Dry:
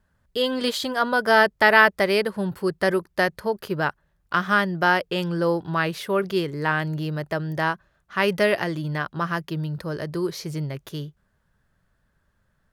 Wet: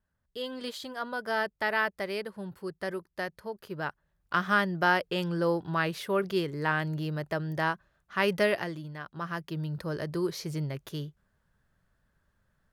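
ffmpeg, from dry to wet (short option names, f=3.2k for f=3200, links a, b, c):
-af "volume=6dB,afade=t=in:st=3.64:d=0.73:silence=0.398107,afade=t=out:st=8.42:d=0.52:silence=0.316228,afade=t=in:st=8.94:d=0.92:silence=0.281838"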